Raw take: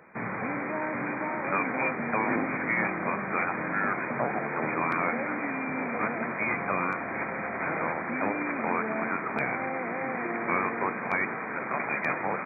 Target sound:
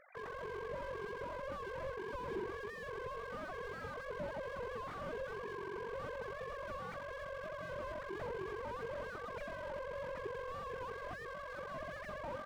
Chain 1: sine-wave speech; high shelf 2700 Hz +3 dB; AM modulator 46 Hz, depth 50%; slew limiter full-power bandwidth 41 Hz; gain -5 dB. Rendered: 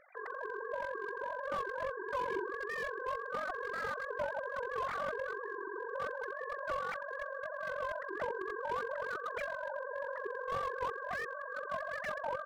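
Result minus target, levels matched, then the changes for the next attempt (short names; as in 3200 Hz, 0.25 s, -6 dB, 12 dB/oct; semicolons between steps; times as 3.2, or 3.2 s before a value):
slew limiter: distortion -11 dB
change: slew limiter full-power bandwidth 12 Hz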